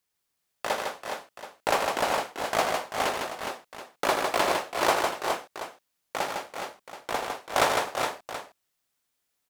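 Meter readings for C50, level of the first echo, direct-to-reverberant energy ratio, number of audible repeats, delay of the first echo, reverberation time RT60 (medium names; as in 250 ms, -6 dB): no reverb, -8.5 dB, no reverb, 4, 81 ms, no reverb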